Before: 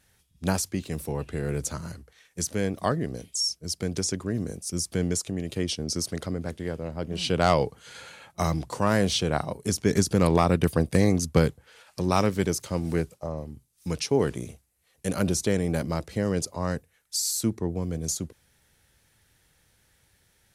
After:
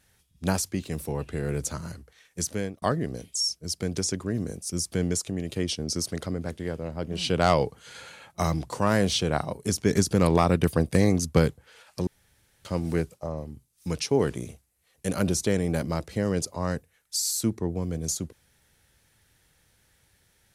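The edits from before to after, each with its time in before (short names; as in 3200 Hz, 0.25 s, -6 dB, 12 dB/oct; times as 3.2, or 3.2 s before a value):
2.4–2.82 fade out equal-power
12.07–12.65 room tone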